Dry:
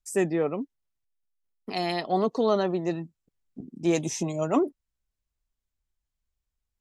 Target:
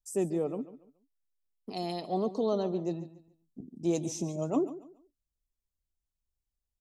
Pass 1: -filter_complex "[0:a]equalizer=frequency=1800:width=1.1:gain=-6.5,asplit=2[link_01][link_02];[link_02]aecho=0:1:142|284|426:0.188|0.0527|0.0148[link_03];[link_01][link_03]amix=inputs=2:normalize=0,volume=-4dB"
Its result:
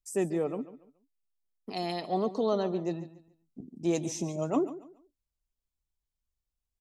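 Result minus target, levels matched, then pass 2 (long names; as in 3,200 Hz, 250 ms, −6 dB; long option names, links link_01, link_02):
2,000 Hz band +6.5 dB
-filter_complex "[0:a]equalizer=frequency=1800:width=1.1:gain=-16.5,asplit=2[link_01][link_02];[link_02]aecho=0:1:142|284|426:0.188|0.0527|0.0148[link_03];[link_01][link_03]amix=inputs=2:normalize=0,volume=-4dB"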